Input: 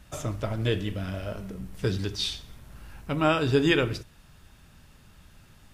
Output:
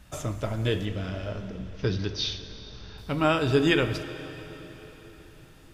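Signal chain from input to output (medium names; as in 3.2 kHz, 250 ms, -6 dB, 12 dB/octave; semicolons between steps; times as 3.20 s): 0.85–2.98 s: steep low-pass 6.3 kHz 96 dB/octave; plate-style reverb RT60 4.4 s, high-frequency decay 0.95×, DRR 10.5 dB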